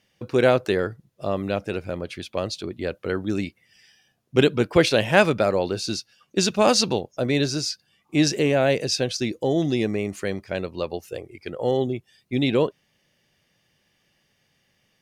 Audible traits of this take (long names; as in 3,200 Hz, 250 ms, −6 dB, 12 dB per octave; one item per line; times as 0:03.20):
background noise floor −69 dBFS
spectral slope −4.5 dB per octave